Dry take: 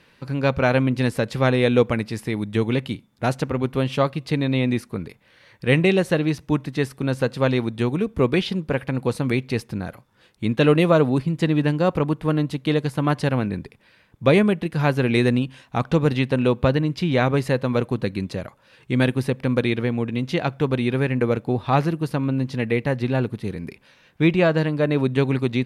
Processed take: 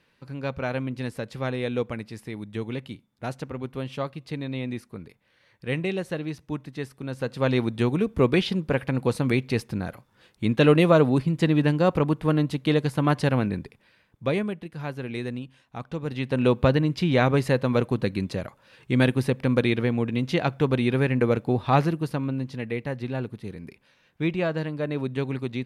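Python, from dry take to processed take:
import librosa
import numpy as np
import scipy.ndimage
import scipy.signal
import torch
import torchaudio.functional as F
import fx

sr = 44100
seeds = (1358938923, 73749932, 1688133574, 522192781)

y = fx.gain(x, sr, db=fx.line((7.09, -10.0), (7.59, -1.0), (13.48, -1.0), (14.72, -13.0), (16.01, -13.0), (16.46, -1.0), (21.79, -1.0), (22.61, -8.0)))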